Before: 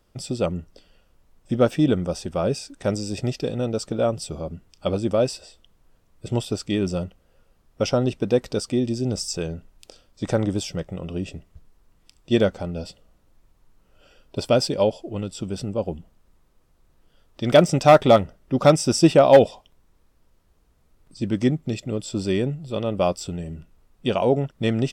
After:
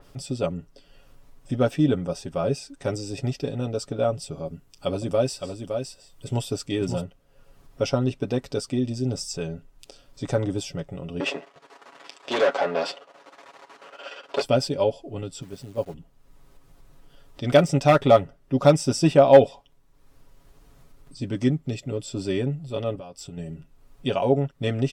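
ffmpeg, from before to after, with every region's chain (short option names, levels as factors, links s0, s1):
-filter_complex "[0:a]asettb=1/sr,asplit=3[s0][s1][s2];[s0]atrim=end=4.454[s3];[s1]atrim=start=4.45:end=7.01,asetpts=PTS-STARTPTS,afade=t=in:d=0.004:c=qsin,afade=t=out:st=2.556:d=0.004:c=qsin,highshelf=f=7200:g=7.5,aecho=1:1:564:0.473,atrim=end_sample=112896[s4];[s2]atrim=start=7.006[s5];[s3][s4]acrossfade=d=0.004:c1=hsin:c2=qsin[s6];[s6][s5]acrossfade=d=0.004:c1=qsin:c2=hsin,asettb=1/sr,asplit=3[s7][s8][s9];[s7]atrim=end=11.204[s10];[s8]atrim=start=11.2:end=14.42,asetpts=PTS-STARTPTS,afade=t=in:d=0.004:c=qsin,afade=t=out:st=3.216:d=0.004:c=qsin,aeval=exprs='if(lt(val(0),0),0.251*val(0),val(0))':c=same,asplit=2[s11][s12];[s12]highpass=f=720:p=1,volume=50.1,asoftclip=type=tanh:threshold=0.473[s13];[s11][s13]amix=inputs=2:normalize=0,lowpass=f=1800:p=1,volume=0.501,highpass=430,lowpass=7600[s14];[s9]atrim=start=14.416[s15];[s10][s14]acrossfade=d=0.004:c1=hsin:c2=qsin[s16];[s16][s15]acrossfade=d=0.004:c1=qsin:c2=hsin,asettb=1/sr,asplit=3[s17][s18][s19];[s17]atrim=end=15.424[s20];[s18]atrim=start=15.42:end=15.94,asetpts=PTS-STARTPTS,afade=t=in:d=0.004:c=qsin,afade=t=out:st=0.516:d=0.004:c=qsin,agate=range=0.398:threshold=0.0501:ratio=16:release=100:detection=peak,acrusher=bits=9:dc=4:mix=0:aa=0.000001[s21];[s19]atrim=start=15.936[s22];[s20][s21]acrossfade=d=0.004:c1=hsin:c2=qsin[s23];[s23][s22]acrossfade=d=0.004:c1=qsin:c2=hsin,asettb=1/sr,asplit=3[s24][s25][s26];[s24]atrim=end=22.954[s27];[s25]atrim=start=22.95:end=23.37,asetpts=PTS-STARTPTS,afade=t=in:d=0.004:c=qsin,afade=t=out:st=0.416:d=0.004:c=qsin,agate=range=0.0224:threshold=0.0178:ratio=3:release=100:detection=peak,acompressor=threshold=0.0251:ratio=16:attack=3.2:release=140:knee=1:detection=peak[s28];[s26]atrim=start=23.366[s29];[s27][s28]acrossfade=d=0.004:c1=hsin:c2=qsin[s30];[s30][s29]acrossfade=d=0.004:c1=qsin:c2=hsin,aecho=1:1:7.2:0.64,acompressor=mode=upward:threshold=0.0178:ratio=2.5,adynamicequalizer=threshold=0.0126:dfrequency=3400:dqfactor=0.7:tfrequency=3400:tqfactor=0.7:attack=5:release=100:ratio=0.375:range=2:mode=cutabove:tftype=highshelf,volume=0.631"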